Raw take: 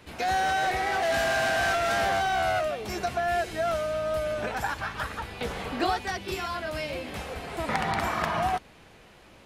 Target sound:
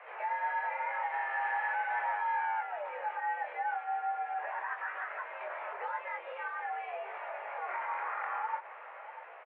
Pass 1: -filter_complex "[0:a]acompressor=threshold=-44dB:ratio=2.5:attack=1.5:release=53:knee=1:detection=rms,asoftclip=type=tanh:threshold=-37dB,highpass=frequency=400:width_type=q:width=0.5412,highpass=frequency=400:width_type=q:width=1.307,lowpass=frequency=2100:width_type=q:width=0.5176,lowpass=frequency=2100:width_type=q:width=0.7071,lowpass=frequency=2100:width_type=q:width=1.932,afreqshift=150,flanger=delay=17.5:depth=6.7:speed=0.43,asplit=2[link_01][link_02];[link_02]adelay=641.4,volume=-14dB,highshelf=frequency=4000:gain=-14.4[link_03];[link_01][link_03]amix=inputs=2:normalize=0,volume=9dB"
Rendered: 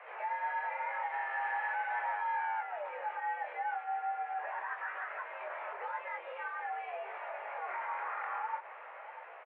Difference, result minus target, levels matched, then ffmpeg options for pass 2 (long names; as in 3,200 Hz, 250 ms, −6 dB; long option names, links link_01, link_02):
soft clipping: distortion +16 dB
-filter_complex "[0:a]acompressor=threshold=-44dB:ratio=2.5:attack=1.5:release=53:knee=1:detection=rms,asoftclip=type=tanh:threshold=-27.5dB,highpass=frequency=400:width_type=q:width=0.5412,highpass=frequency=400:width_type=q:width=1.307,lowpass=frequency=2100:width_type=q:width=0.5176,lowpass=frequency=2100:width_type=q:width=0.7071,lowpass=frequency=2100:width_type=q:width=1.932,afreqshift=150,flanger=delay=17.5:depth=6.7:speed=0.43,asplit=2[link_01][link_02];[link_02]adelay=641.4,volume=-14dB,highshelf=frequency=4000:gain=-14.4[link_03];[link_01][link_03]amix=inputs=2:normalize=0,volume=9dB"